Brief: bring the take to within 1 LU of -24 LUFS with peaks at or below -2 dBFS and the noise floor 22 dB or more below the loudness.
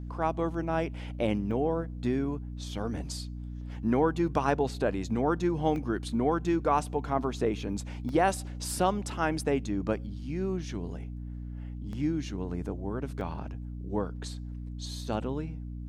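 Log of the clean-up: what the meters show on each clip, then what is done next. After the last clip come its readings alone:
dropouts 5; longest dropout 1.4 ms; hum 60 Hz; highest harmonic 300 Hz; hum level -36 dBFS; loudness -31.5 LUFS; peak level -11.5 dBFS; loudness target -24.0 LUFS
-> interpolate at 1.51/5.76/8.09/11.93/13.21 s, 1.4 ms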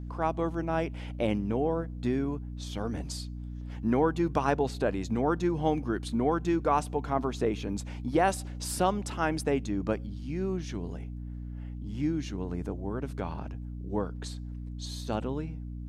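dropouts 0; hum 60 Hz; highest harmonic 300 Hz; hum level -36 dBFS
-> hum notches 60/120/180/240/300 Hz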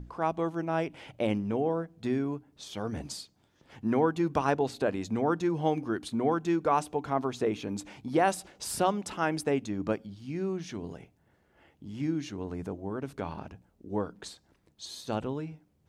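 hum not found; loudness -31.5 LUFS; peak level -12.0 dBFS; loudness target -24.0 LUFS
-> trim +7.5 dB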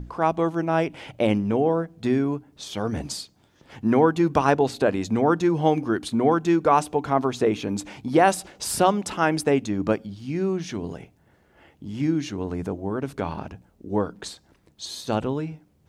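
loudness -24.0 LUFS; peak level -4.5 dBFS; noise floor -61 dBFS

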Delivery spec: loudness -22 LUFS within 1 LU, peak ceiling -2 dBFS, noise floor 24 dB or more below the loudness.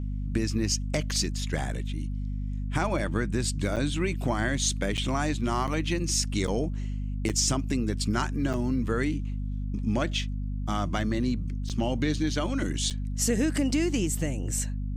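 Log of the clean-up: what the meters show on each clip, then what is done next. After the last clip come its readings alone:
dropouts 8; longest dropout 7.7 ms; hum 50 Hz; highest harmonic 250 Hz; hum level -29 dBFS; loudness -28.5 LUFS; peak level -12.0 dBFS; loudness target -22.0 LUFS
-> interpolate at 3.76/4.97/5.67/6.47/7.29/8.53/11.69/12.90 s, 7.7 ms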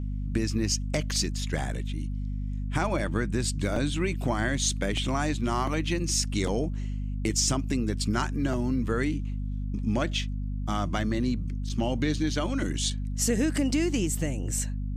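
dropouts 0; hum 50 Hz; highest harmonic 250 Hz; hum level -29 dBFS
-> hum notches 50/100/150/200/250 Hz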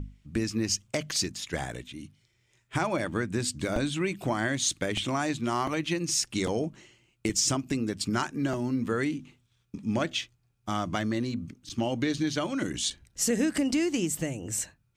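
hum not found; loudness -29.5 LUFS; peak level -13.5 dBFS; loudness target -22.0 LUFS
-> trim +7.5 dB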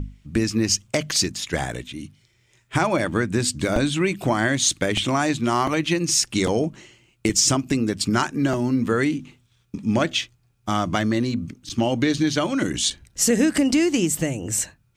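loudness -22.0 LUFS; peak level -6.0 dBFS; noise floor -63 dBFS

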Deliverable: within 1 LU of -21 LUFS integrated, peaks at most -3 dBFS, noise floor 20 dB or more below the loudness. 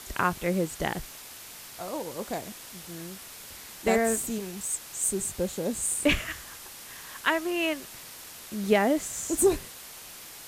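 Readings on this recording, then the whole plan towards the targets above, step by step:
noise floor -45 dBFS; noise floor target -49 dBFS; loudness -28.5 LUFS; peak level -8.5 dBFS; loudness target -21.0 LUFS
-> noise print and reduce 6 dB; trim +7.5 dB; peak limiter -3 dBFS

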